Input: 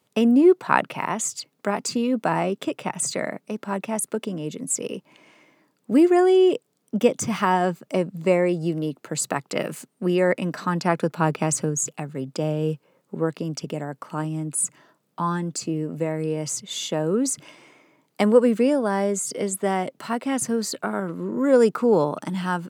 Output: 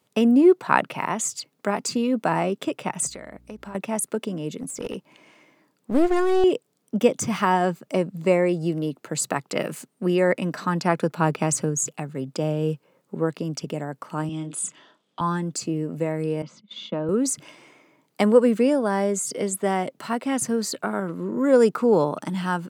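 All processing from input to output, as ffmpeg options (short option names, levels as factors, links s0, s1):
-filter_complex "[0:a]asettb=1/sr,asplit=3[s0][s1][s2];[s0]atrim=end=3.074[s3];[s1]atrim=start=3.07:end=3.75,asetpts=PTS-STARTPTS,afade=t=in:d=0.004:c=qsin,afade=t=out:st=0.676:d=0.004:c=qsin,acompressor=threshold=0.0224:ratio=12:attack=3.2:release=140:knee=1:detection=peak,aeval=exprs='val(0)+0.002*(sin(2*PI*60*n/s)+sin(2*PI*2*60*n/s)/2+sin(2*PI*3*60*n/s)/3+sin(2*PI*4*60*n/s)/4+sin(2*PI*5*60*n/s)/5)':c=same[s4];[s2]atrim=start=3.746[s5];[s3][s4]acrossfade=d=0.004:c1=hsin:c2=qsin[s6];[s6][s5]acrossfade=d=0.004:c1=qsin:c2=hsin,asettb=1/sr,asplit=3[s7][s8][s9];[s7]atrim=end=4.584[s10];[s8]atrim=start=4.58:end=6.44,asetpts=PTS-STARTPTS,afade=t=in:d=0.004:c=qsin,afade=t=out:st=1.856:d=0.004:c=qsin,deesser=0.5,aeval=exprs='clip(val(0),-1,0.0398)':c=same[s11];[s9]atrim=start=6.436[s12];[s10][s11]acrossfade=d=0.004:c1=hsin:c2=qsin[s13];[s13][s12]acrossfade=d=0.004:c1=qsin:c2=hsin,asettb=1/sr,asplit=3[s14][s15][s16];[s14]atrim=end=14.294[s17];[s15]atrim=start=14.29:end=15.21,asetpts=PTS-STARTPTS,afade=t=in:d=0.004:c=qsin,afade=t=out:st=0.916:d=0.004:c=qsin,highpass=210,lowpass=7100,equalizer=f=3300:t=o:w=0.38:g=13.5,asplit=2[s18][s19];[s19]adelay=31,volume=0.447[s20];[s18][s20]amix=inputs=2:normalize=0,atrim=end_sample=40572[s21];[s16]atrim=start=15.206[s22];[s17][s21]acrossfade=d=0.004:c1=hsin:c2=qsin[s23];[s23][s22]acrossfade=d=0.004:c1=qsin:c2=hsin,asettb=1/sr,asplit=3[s24][s25][s26];[s24]atrim=end=16.424[s27];[s25]atrim=start=16.42:end=17.09,asetpts=PTS-STARTPTS,afade=t=in:d=0.004:c=qsin,afade=t=out:st=0.666:d=0.004:c=qsin,agate=range=0.0224:threshold=0.0316:ratio=3:release=100:detection=peak,highpass=f=170:w=0.5412,highpass=f=170:w=1.3066,equalizer=f=210:t=q:w=4:g=9,equalizer=f=400:t=q:w=4:g=-9,equalizer=f=750:t=q:w=4:g=-7,equalizer=f=1800:t=q:w=4:g=-9,equalizer=f=2700:t=q:w=4:g=-5,lowpass=f=3400:w=0.5412,lowpass=f=3400:w=1.3066[s28];[s26]atrim=start=17.086[s29];[s27][s28]acrossfade=d=0.004:c1=hsin:c2=qsin[s30];[s30][s29]acrossfade=d=0.004:c1=qsin:c2=hsin"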